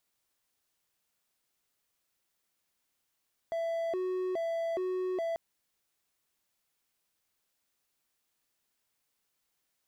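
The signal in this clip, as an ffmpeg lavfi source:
-f lavfi -i "aevalsrc='0.0398*(1-4*abs(mod((517*t+148/1.2*(0.5-abs(mod(1.2*t,1)-0.5)))+0.25,1)-0.5))':d=1.84:s=44100"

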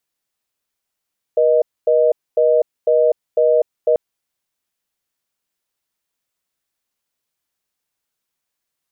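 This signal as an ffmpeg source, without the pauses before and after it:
-f lavfi -i "aevalsrc='0.211*(sin(2*PI*480*t)+sin(2*PI*620*t))*clip(min(mod(t,0.5),0.25-mod(t,0.5))/0.005,0,1)':d=2.59:s=44100"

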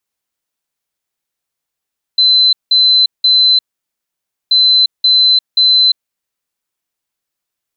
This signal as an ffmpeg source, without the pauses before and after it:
-f lavfi -i "aevalsrc='0.501*sin(2*PI*4050*t)*clip(min(mod(mod(t,2.33),0.53),0.35-mod(mod(t,2.33),0.53))/0.005,0,1)*lt(mod(t,2.33),1.59)':d=4.66:s=44100"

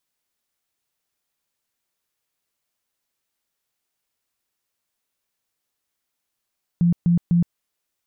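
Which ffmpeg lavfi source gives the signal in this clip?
-f lavfi -i "aevalsrc='0.211*sin(2*PI*172*mod(t,0.25))*lt(mod(t,0.25),20/172)':d=0.75:s=44100"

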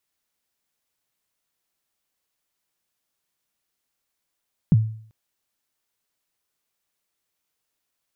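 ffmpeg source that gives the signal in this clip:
-f lavfi -i "aevalsrc='0.355*pow(10,-3*t/0.54)*sin(2*PI*(200*0.032/log(110/200)*(exp(log(110/200)*min(t,0.032)/0.032)-1)+110*max(t-0.032,0)))':d=0.39:s=44100"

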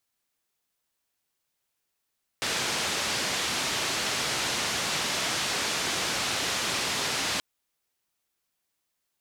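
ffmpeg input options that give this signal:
-f lavfi -i "anoisesrc=c=white:d=4.98:r=44100:seed=1,highpass=f=86,lowpass=f=5600,volume=-18.4dB"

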